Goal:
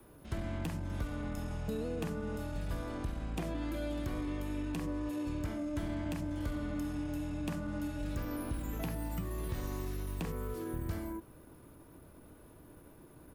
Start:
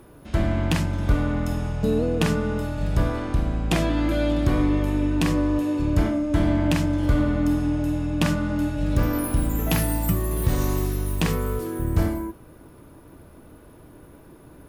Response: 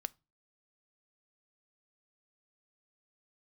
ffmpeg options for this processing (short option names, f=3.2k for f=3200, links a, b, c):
-filter_complex "[0:a]adynamicequalizer=threshold=0.0112:dfrequency=130:dqfactor=3:tfrequency=130:tqfactor=3:attack=5:release=100:ratio=0.375:range=2:mode=cutabove:tftype=bell,atempo=1.1,acrossover=split=1100|2900|6500[a][b][c][d];[a]acompressor=threshold=-26dB:ratio=4[e];[b]acompressor=threshold=-44dB:ratio=4[f];[c]acompressor=threshold=-52dB:ratio=4[g];[d]acompressor=threshold=-52dB:ratio=4[h];[e][f][g][h]amix=inputs=4:normalize=0,acrossover=split=390[i][j];[j]crystalizer=i=0.5:c=0[k];[i][k]amix=inputs=2:normalize=0,volume=-8.5dB"